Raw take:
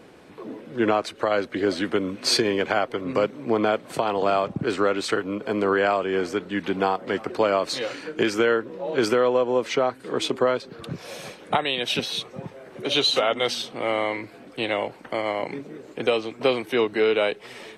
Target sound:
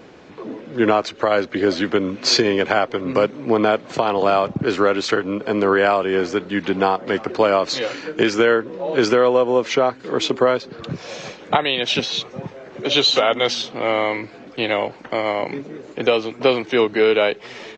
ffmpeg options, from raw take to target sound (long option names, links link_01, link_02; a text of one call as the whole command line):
ffmpeg -i in.wav -af "aresample=16000,aresample=44100,volume=5dB" out.wav